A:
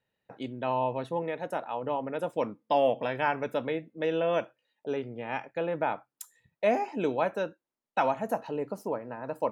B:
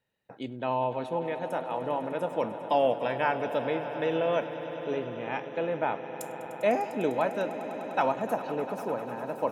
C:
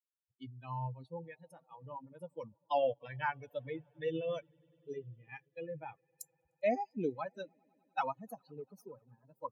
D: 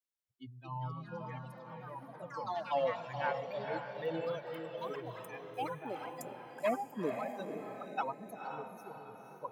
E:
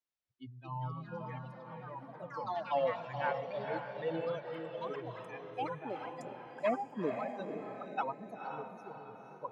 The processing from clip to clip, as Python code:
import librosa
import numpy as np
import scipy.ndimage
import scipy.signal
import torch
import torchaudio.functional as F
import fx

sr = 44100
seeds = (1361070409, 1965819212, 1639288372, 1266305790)

y1 = fx.echo_swell(x, sr, ms=100, loudest=5, wet_db=-16.0)
y2 = fx.bin_expand(y1, sr, power=3.0)
y2 = fx.peak_eq(y2, sr, hz=130.0, db=7.5, octaves=0.58)
y2 = F.gain(torch.from_numpy(y2), -2.5).numpy()
y3 = fx.echo_diffused(y2, sr, ms=505, feedback_pct=48, wet_db=-5.5)
y3 = fx.echo_pitch(y3, sr, ms=316, semitones=4, count=3, db_per_echo=-6.0)
y3 = fx.wow_flutter(y3, sr, seeds[0], rate_hz=2.1, depth_cents=16.0)
y3 = F.gain(torch.from_numpy(y3), -1.5).numpy()
y4 = fx.air_absorb(y3, sr, metres=110.0)
y4 = F.gain(torch.from_numpy(y4), 1.0).numpy()